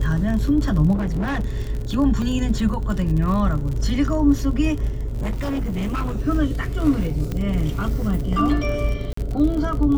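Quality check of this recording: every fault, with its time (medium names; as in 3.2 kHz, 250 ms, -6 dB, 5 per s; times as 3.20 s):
crackle 48 per s -27 dBFS
0.94–1.55 s: clipped -19.5 dBFS
2.22 s: dropout 2.3 ms
4.90–6.17 s: clipped -20.5 dBFS
7.32 s: pop -14 dBFS
9.13–9.17 s: dropout 44 ms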